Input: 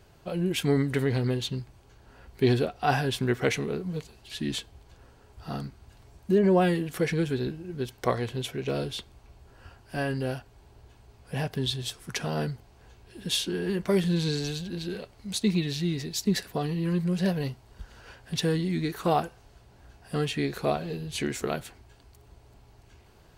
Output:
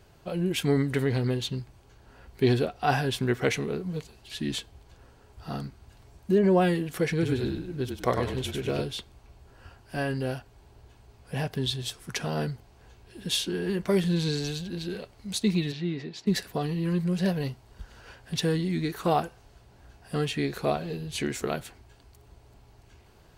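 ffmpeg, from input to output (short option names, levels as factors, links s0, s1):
-filter_complex "[0:a]asettb=1/sr,asplit=3[s0][s1][s2];[s0]atrim=end=7.114[s3];[s1]atrim=start=7.11:end=8.82,asetpts=PTS-STARTPTS,afade=t=in:d=0.004:c=qsin,afade=t=out:st=1.706:d=0.004:c=qsin,asplit=5[s4][s5][s6][s7][s8];[s5]adelay=98,afreqshift=-38,volume=0.562[s9];[s6]adelay=196,afreqshift=-76,volume=0.168[s10];[s7]adelay=294,afreqshift=-114,volume=0.0507[s11];[s8]adelay=392,afreqshift=-152,volume=0.0151[s12];[s4][s9][s10][s11][s12]amix=inputs=5:normalize=0,atrim=end_sample=75411[s13];[s2]atrim=start=8.816[s14];[s3][s13]acrossfade=d=0.004:c1=hsin:c2=qsin[s15];[s15][s14]acrossfade=d=0.004:c1=qsin:c2=hsin,asplit=3[s16][s17][s18];[s16]afade=t=out:st=15.71:d=0.02[s19];[s17]highpass=170,lowpass=2700,afade=t=in:st=15.71:d=0.02,afade=t=out:st=16.26:d=0.02[s20];[s18]afade=t=in:st=16.26:d=0.02[s21];[s19][s20][s21]amix=inputs=3:normalize=0"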